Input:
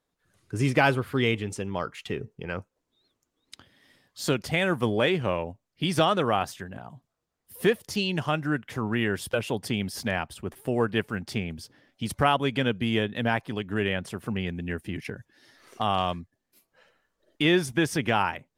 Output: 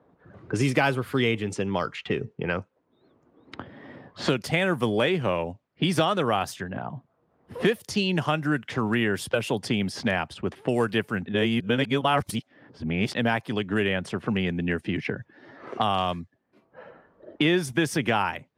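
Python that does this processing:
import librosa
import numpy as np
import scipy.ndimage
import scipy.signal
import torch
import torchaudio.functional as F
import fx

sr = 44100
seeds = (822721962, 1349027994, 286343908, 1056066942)

y = fx.edit(x, sr, fx.reverse_span(start_s=11.26, length_s=1.89), tone=tone)
y = scipy.signal.sosfilt(scipy.signal.butter(2, 92.0, 'highpass', fs=sr, output='sos'), y)
y = fx.env_lowpass(y, sr, base_hz=940.0, full_db=-25.0)
y = fx.band_squash(y, sr, depth_pct=70)
y = y * librosa.db_to_amplitude(1.5)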